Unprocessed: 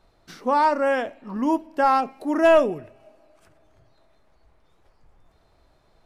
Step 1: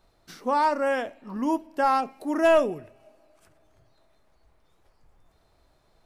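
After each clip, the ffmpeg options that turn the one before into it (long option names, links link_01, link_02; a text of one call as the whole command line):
ffmpeg -i in.wav -af "highshelf=frequency=6200:gain=7,volume=-3.5dB" out.wav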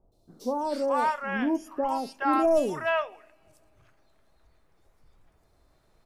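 ffmpeg -i in.wav -filter_complex "[0:a]acrossover=split=770|3800[link_01][link_02][link_03];[link_03]adelay=120[link_04];[link_02]adelay=420[link_05];[link_01][link_05][link_04]amix=inputs=3:normalize=0" out.wav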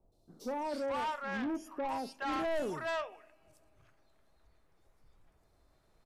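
ffmpeg -i in.wav -filter_complex "[0:a]acrossover=split=110[link_01][link_02];[link_02]asoftclip=type=tanh:threshold=-27dB[link_03];[link_01][link_03]amix=inputs=2:normalize=0,aresample=32000,aresample=44100,volume=-4.5dB" out.wav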